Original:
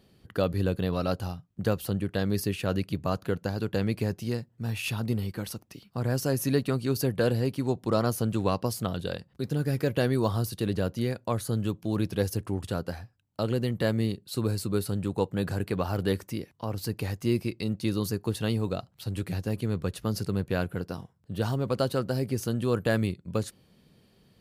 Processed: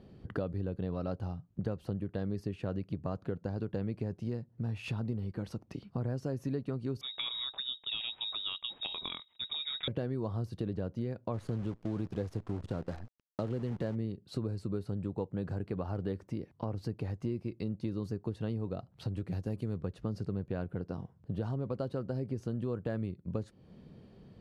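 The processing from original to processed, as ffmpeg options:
ffmpeg -i in.wav -filter_complex "[0:a]asettb=1/sr,asplit=3[link_01][link_02][link_03];[link_01]atrim=end=7.014[link_04];[link_02]atrim=start=7.01:end=9.88,asetpts=PTS-STARTPTS,afade=type=in:duration=0.004:curve=qsin,afade=type=out:start_time=2.866:duration=0.004:curve=qsin,lowpass=frequency=3300:width_type=q:width=0.5098,lowpass=frequency=3300:width_type=q:width=0.6013,lowpass=frequency=3300:width_type=q:width=0.9,lowpass=frequency=3300:width_type=q:width=2.563,afreqshift=-3900[link_05];[link_03]atrim=start=9.876[link_06];[link_04][link_05]acrossfade=duration=0.004:curve1=hsin:curve2=qsin[link_07];[link_07][link_06]acrossfade=duration=0.004:curve1=qsin:curve2=hsin,asplit=3[link_08][link_09][link_10];[link_08]afade=type=out:start_time=11.33:duration=0.02[link_11];[link_09]acrusher=bits=7:dc=4:mix=0:aa=0.000001,afade=type=in:start_time=11.33:duration=0.02,afade=type=out:start_time=13.94:duration=0.02[link_12];[link_10]afade=type=in:start_time=13.94:duration=0.02[link_13];[link_11][link_12][link_13]amix=inputs=3:normalize=0,asettb=1/sr,asplit=3[link_14][link_15][link_16];[link_14]atrim=end=19.324[link_17];[link_15]atrim=start=19.32:end=19.77,asetpts=PTS-STARTPTS,afade=type=in:duration=0.004:curve=qsin,afade=type=out:start_time=0.446:duration=0.004:curve=qsin,aemphasis=mode=production:type=50kf[link_18];[link_16]atrim=start=19.766[link_19];[link_17][link_18]acrossfade=duration=0.004:curve1=hsin:curve2=qsin[link_20];[link_20][link_19]acrossfade=duration=0.004:curve1=qsin:curve2=hsin,lowpass=6800,tiltshelf=frequency=1500:gain=7.5,acompressor=threshold=-35dB:ratio=4" out.wav

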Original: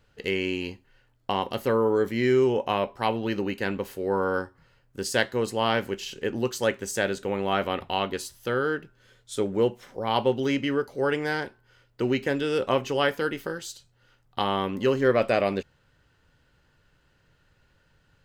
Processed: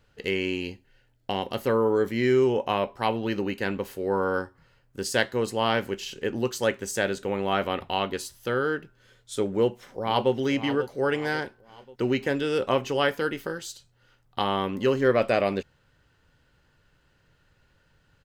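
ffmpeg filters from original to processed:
ffmpeg -i in.wav -filter_complex "[0:a]asettb=1/sr,asplit=3[link_01][link_02][link_03];[link_01]atrim=end=0.614[link_04];[link_02]atrim=start=0.61:end=1.5,asetpts=PTS-STARTPTS,afade=type=in:duration=0.004:curve=qsin,afade=type=out:start_time=0.886:duration=0.004:curve=qsin,equalizer=frequency=1100:width=3.1:gain=-10.5[link_05];[link_03]atrim=start=1.496[link_06];[link_04][link_05]acrossfade=duration=0.004:curve1=hsin:curve2=qsin[link_07];[link_07][link_06]acrossfade=duration=0.004:curve1=qsin:curve2=hsin,asplit=2[link_08][link_09];[link_09]afade=type=in:start_time=9.51:duration=0.01,afade=type=out:start_time=10.33:duration=0.01,aecho=0:1:540|1080|1620|2160|2700:0.251189|0.113035|0.0508657|0.0228896|0.0103003[link_10];[link_08][link_10]amix=inputs=2:normalize=0" out.wav

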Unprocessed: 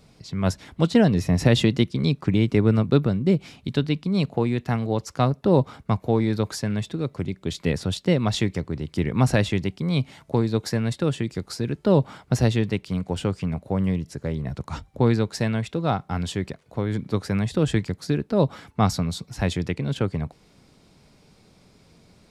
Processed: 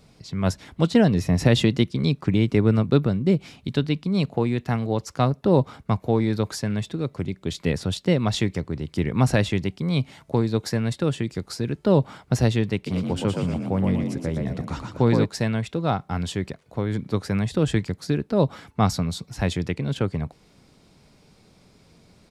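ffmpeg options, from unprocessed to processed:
ffmpeg -i in.wav -filter_complex "[0:a]asplit=3[link_01][link_02][link_03];[link_01]afade=type=out:start_time=12.86:duration=0.02[link_04];[link_02]asplit=6[link_05][link_06][link_07][link_08][link_09][link_10];[link_06]adelay=119,afreqshift=42,volume=-4dB[link_11];[link_07]adelay=238,afreqshift=84,volume=-12dB[link_12];[link_08]adelay=357,afreqshift=126,volume=-19.9dB[link_13];[link_09]adelay=476,afreqshift=168,volume=-27.9dB[link_14];[link_10]adelay=595,afreqshift=210,volume=-35.8dB[link_15];[link_05][link_11][link_12][link_13][link_14][link_15]amix=inputs=6:normalize=0,afade=type=in:start_time=12.86:duration=0.02,afade=type=out:start_time=15.24:duration=0.02[link_16];[link_03]afade=type=in:start_time=15.24:duration=0.02[link_17];[link_04][link_16][link_17]amix=inputs=3:normalize=0" out.wav

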